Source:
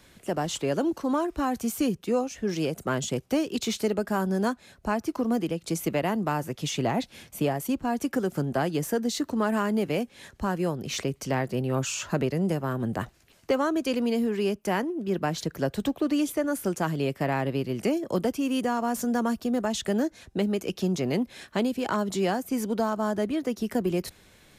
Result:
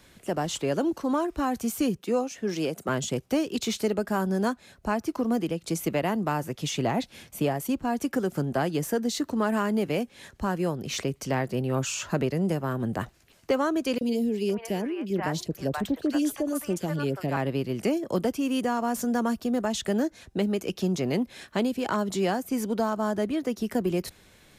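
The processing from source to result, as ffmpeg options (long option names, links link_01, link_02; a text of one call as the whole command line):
ffmpeg -i in.wav -filter_complex "[0:a]asettb=1/sr,asplit=3[link_01][link_02][link_03];[link_01]atrim=end=1.994[link_04];[link_02]atrim=start=1.99:end=2.89,asetpts=PTS-STARTPTS,afade=type=in:duration=0.004:curve=qsin,afade=type=out:start_time=0.896:duration=0.004:curve=qsin,highpass=170[link_05];[link_03]atrim=start=2.886[link_06];[link_04][link_05]acrossfade=duration=0.004:curve1=hsin:curve2=qsin[link_07];[link_07][link_06]acrossfade=duration=0.004:curve1=qsin:curve2=hsin,asettb=1/sr,asplit=3[link_08][link_09][link_10];[link_08]atrim=end=13.984[link_11];[link_09]atrim=start=13.98:end=17.37,asetpts=PTS-STARTPTS,afade=type=in:duration=0.004:curve=qsin,afade=type=out:start_time=3.386:duration=0.004:curve=qsin,acrossover=split=700|2400[link_12][link_13][link_14];[link_12]adelay=30[link_15];[link_13]adelay=510[link_16];[link_15][link_16][link_14]amix=inputs=3:normalize=0,atrim=end_sample=149499[link_17];[link_10]atrim=start=17.366[link_18];[link_11][link_17]acrossfade=duration=0.004:curve1=hsin:curve2=qsin[link_19];[link_19][link_18]acrossfade=duration=0.004:curve1=qsin:curve2=hsin" out.wav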